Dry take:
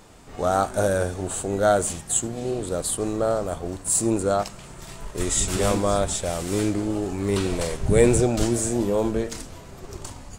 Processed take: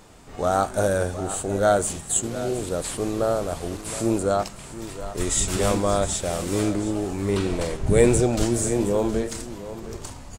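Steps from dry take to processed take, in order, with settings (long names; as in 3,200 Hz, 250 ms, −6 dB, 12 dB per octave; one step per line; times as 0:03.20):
0:02.23–0:04.19: linear delta modulator 64 kbit/s, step −34.5 dBFS
0:07.24–0:07.87: high-shelf EQ 4,900 Hz −6 dB
single-tap delay 716 ms −13.5 dB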